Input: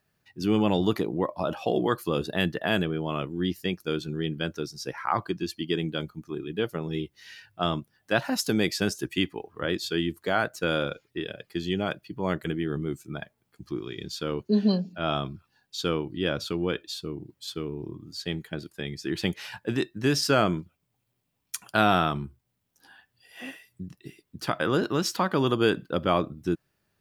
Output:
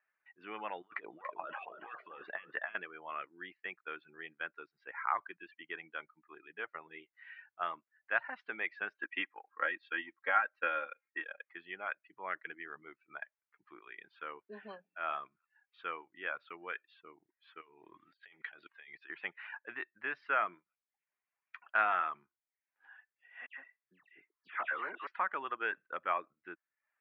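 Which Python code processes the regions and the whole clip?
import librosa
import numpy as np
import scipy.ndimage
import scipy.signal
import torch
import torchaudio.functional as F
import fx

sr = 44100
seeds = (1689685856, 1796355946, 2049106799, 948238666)

y = fx.chain(x, sr, fx.over_compress(threshold_db=-30.0, ratio=-0.5),
    fx.echo_feedback(ms=285, feedback_pct=26, wet_db=-8.5), at=(0.82, 2.75))
y = fx.chain(y, sr, fx.comb(ms=3.7, depth=0.72),
    fx.transient(attack_db=5, sustain_db=-3), at=(8.95, 11.48))
y = fx.chain(y, sr, fx.peak_eq(hz=3900.0, db=13.5, octaves=1.3),
    fx.over_compress(threshold_db=-39.0, ratio=-1.0), at=(17.61, 19.1))
y = fx.chain(y, sr, fx.highpass(hz=120.0, slope=12),
    fx.dispersion(late='lows', ms=117.0, hz=2400.0),
    fx.overload_stage(gain_db=22.5), at=(23.46, 25.07))
y = scipy.signal.sosfilt(scipy.signal.butter(2, 1400.0, 'highpass', fs=sr, output='sos'), y)
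y = fx.dereverb_blind(y, sr, rt60_s=0.51)
y = scipy.signal.sosfilt(scipy.signal.butter(6, 2200.0, 'lowpass', fs=sr, output='sos'), y)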